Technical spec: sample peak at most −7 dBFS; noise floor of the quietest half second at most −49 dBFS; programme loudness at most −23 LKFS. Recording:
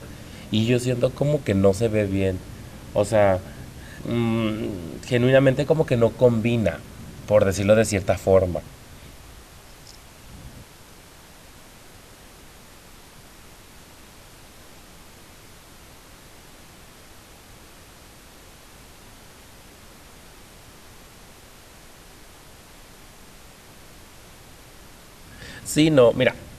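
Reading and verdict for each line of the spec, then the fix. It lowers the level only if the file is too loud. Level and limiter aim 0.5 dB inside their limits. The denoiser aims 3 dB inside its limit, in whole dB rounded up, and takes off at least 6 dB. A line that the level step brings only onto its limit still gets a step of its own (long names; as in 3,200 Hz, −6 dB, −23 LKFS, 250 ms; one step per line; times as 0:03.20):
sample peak −5.0 dBFS: out of spec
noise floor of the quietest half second −47 dBFS: out of spec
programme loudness −21.0 LKFS: out of spec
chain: level −2.5 dB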